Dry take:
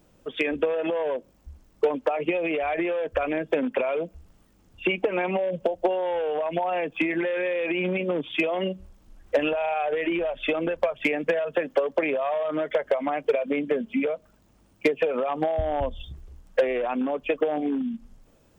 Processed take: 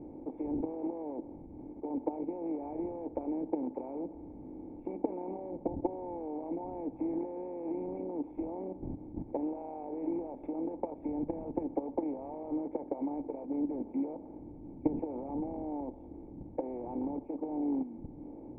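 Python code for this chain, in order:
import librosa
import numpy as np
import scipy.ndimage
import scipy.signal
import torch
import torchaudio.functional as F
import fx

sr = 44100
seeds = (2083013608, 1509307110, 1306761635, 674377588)

y = fx.bin_compress(x, sr, power=0.4)
y = fx.dmg_wind(y, sr, seeds[0], corner_hz=150.0, level_db=-31.0)
y = fx.dynamic_eq(y, sr, hz=860.0, q=0.88, threshold_db=-33.0, ratio=4.0, max_db=7)
y = fx.level_steps(y, sr, step_db=11)
y = fx.formant_cascade(y, sr, vowel='u')
y = F.gain(torch.from_numpy(y), -4.0).numpy()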